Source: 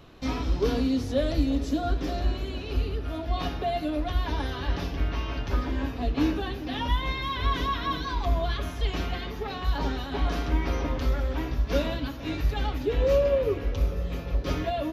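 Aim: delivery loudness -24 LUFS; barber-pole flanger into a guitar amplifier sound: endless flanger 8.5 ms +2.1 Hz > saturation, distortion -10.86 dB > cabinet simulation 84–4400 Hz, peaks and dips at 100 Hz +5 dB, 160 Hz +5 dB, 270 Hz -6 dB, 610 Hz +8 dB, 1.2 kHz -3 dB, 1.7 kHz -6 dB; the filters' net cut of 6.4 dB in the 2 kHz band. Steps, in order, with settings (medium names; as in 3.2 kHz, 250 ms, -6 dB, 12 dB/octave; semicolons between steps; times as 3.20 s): peaking EQ 2 kHz -4.5 dB; endless flanger 8.5 ms +2.1 Hz; saturation -27 dBFS; cabinet simulation 84–4400 Hz, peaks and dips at 100 Hz +5 dB, 160 Hz +5 dB, 270 Hz -6 dB, 610 Hz +8 dB, 1.2 kHz -3 dB, 1.7 kHz -6 dB; trim +11 dB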